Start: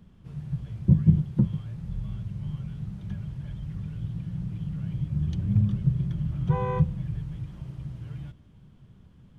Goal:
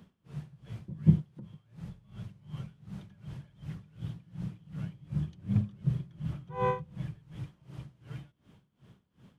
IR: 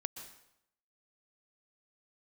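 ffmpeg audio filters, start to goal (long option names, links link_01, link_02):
-filter_complex "[0:a]highpass=frequency=310:poles=1,asettb=1/sr,asplit=3[link_01][link_02][link_03];[link_01]atrim=end=1.264[link_04];[link_02]atrim=start=1.26:end=2.36,asetpts=PTS-STARTPTS,afade=type=in:duration=0.004:curve=qsin,afade=type=out:start_time=1.096:duration=0.004:curve=qsin,acompressor=threshold=-40dB:ratio=16[link_05];[link_03]atrim=start=2.356[link_06];[link_04][link_05]acrossfade=duration=0.004:curve1=hsin:curve2=qsin[link_07];[link_07][link_06]acrossfade=duration=0.004:curve1=qsin:curve2=hsin,aeval=exprs='val(0)*pow(10,-22*(0.5-0.5*cos(2*PI*2.7*n/s))/20)':channel_layout=same,volume=5dB"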